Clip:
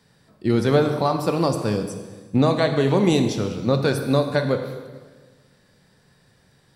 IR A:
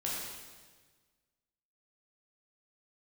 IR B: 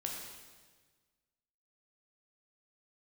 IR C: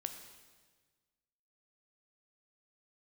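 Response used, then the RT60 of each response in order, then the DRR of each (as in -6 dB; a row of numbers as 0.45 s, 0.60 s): C; 1.4 s, 1.4 s, 1.4 s; -5.5 dB, -1.0 dB, 6.0 dB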